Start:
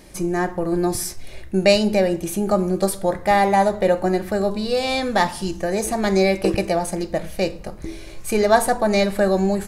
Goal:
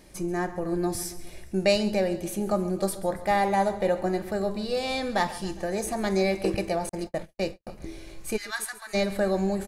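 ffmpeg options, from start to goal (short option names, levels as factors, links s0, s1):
-filter_complex "[0:a]asplit=3[s0][s1][s2];[s0]afade=t=out:st=8.36:d=0.02[s3];[s1]highpass=f=1400:w=0.5412,highpass=f=1400:w=1.3066,afade=t=in:st=8.36:d=0.02,afade=t=out:st=8.93:d=0.02[s4];[s2]afade=t=in:st=8.93:d=0.02[s5];[s3][s4][s5]amix=inputs=3:normalize=0,aecho=1:1:137|274|411|548|685|822:0.141|0.0833|0.0492|0.029|0.0171|0.0101,asettb=1/sr,asplit=3[s6][s7][s8];[s6]atrim=end=6.894[s9];[s7]atrim=start=6.89:end=7.67,asetpts=PTS-STARTPTS,afade=t=in:d=0.004:c=qsin,afade=t=out:st=0.776:d=0.004:c=qsin,agate=range=0.00126:threshold=0.0562:ratio=16:detection=peak[s10];[s8]atrim=start=7.666[s11];[s9][s10]acrossfade=d=0.004:c1=hsin:c2=qsin[s12];[s12][s11]acrossfade=d=0.004:c1=qsin:c2=hsin,volume=0.447"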